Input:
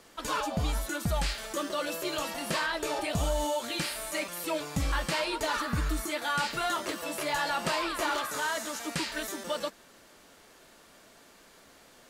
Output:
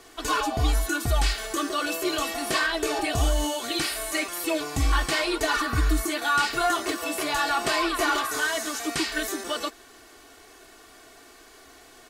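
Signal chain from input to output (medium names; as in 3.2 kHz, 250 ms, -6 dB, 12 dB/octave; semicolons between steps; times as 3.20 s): comb 2.7 ms, depth 85%; trim +3.5 dB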